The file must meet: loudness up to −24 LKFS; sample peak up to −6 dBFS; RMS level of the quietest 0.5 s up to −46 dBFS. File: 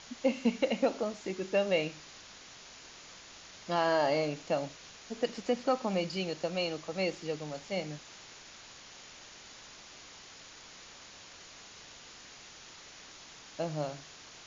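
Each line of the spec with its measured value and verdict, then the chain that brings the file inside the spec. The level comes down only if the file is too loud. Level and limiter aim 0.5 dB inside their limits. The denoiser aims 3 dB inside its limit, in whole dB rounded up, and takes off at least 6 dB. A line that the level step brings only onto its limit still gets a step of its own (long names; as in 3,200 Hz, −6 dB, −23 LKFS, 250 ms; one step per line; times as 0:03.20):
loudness −33.0 LKFS: in spec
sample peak −15.0 dBFS: in spec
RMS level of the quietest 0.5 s −52 dBFS: in spec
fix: no processing needed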